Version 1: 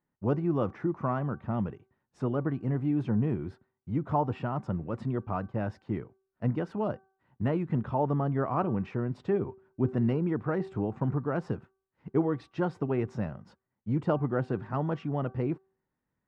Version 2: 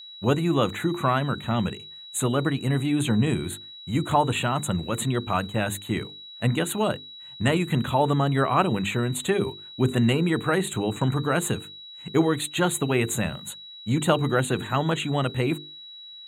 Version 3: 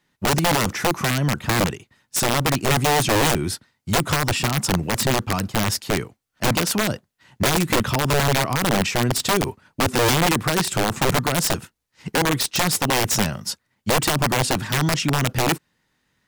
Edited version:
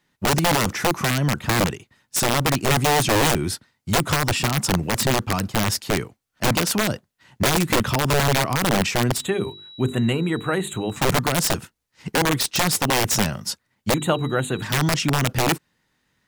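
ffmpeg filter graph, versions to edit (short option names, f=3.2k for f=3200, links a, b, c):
-filter_complex "[1:a]asplit=2[a][b];[2:a]asplit=3[c][d][e];[c]atrim=end=9.27[f];[a]atrim=start=9.11:end=11.05[g];[d]atrim=start=10.89:end=13.942[h];[b]atrim=start=13.938:end=14.622[i];[e]atrim=start=14.618[j];[f][g]acrossfade=d=0.16:c1=tri:c2=tri[k];[k][h]acrossfade=d=0.16:c1=tri:c2=tri[l];[l][i]acrossfade=d=0.004:c1=hsin:c2=hsin[m];[m][j]acrossfade=d=0.004:c1=hsin:c2=hsin"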